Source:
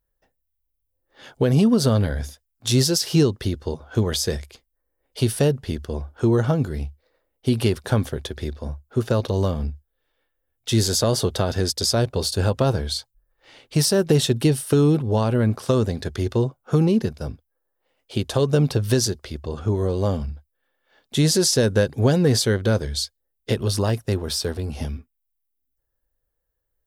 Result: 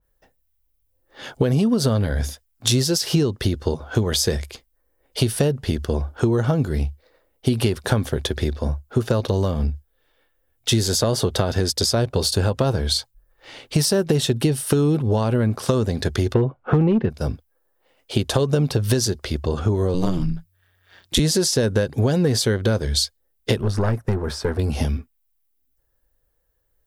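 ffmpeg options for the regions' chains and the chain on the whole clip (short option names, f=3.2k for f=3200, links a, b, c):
-filter_complex "[0:a]asettb=1/sr,asplit=3[a][b][c];[a]atrim=end=16.344[d];[b]atrim=start=16.34:end=17.1,asetpts=PTS-STARTPTS,afade=t=in:d=0.004:c=qsin,afade=t=out:st=0.756:d=0.004:c=qsin,lowpass=f=2.7k:w=0.5412,lowpass=f=2.7k:w=1.3066,acontrast=50,asoftclip=type=hard:threshold=-7.5dB[e];[c]atrim=start=17.096[f];[d][e]acrossfade=d=0.004:c1=hsin:c2=qsin[g];[g][f]acrossfade=d=0.004:c1=qsin:c2=hsin,asettb=1/sr,asplit=3[h][i][j];[h]atrim=end=19.944[k];[i]atrim=start=19.94:end=21.2,asetpts=PTS-STARTPTS,afade=t=in:d=0.004:c=qsin,afade=t=out:st=1.256:d=0.004:c=qsin,equalizer=f=560:t=o:w=1.8:g=-8.5,acontrast=52,aeval=exprs='val(0)*sin(2*PI*91*n/s)':c=same[l];[j]atrim=start=21.196[m];[k][l]acrossfade=d=0.004:c1=hsin:c2=qsin[n];[n][m]acrossfade=d=0.004:c1=qsin:c2=hsin,asettb=1/sr,asplit=3[o][p][q];[o]atrim=end=23.614[r];[p]atrim=start=23.61:end=24.59,asetpts=PTS-STARTPTS,afade=t=in:d=0.004:c=qsin,afade=t=out:st=0.976:d=0.004:c=qsin,highshelf=f=2.3k:t=q:w=1.5:g=-10,acrossover=split=8200[s][t];[t]acompressor=threshold=-54dB:ratio=4:attack=1:release=60[u];[s][u]amix=inputs=2:normalize=0,aeval=exprs='(tanh(6.31*val(0)+0.55)-tanh(0.55))/6.31':c=same[v];[q]atrim=start=24.586[w];[r][v]acrossfade=d=0.004:c1=hsin:c2=qsin[x];[x][w]acrossfade=d=0.004:c1=qsin:c2=hsin,acompressor=threshold=-24dB:ratio=6,adynamicequalizer=threshold=0.01:dfrequency=3200:dqfactor=0.7:tfrequency=3200:tqfactor=0.7:attack=5:release=100:ratio=0.375:range=2:mode=cutabove:tftype=highshelf,volume=8dB"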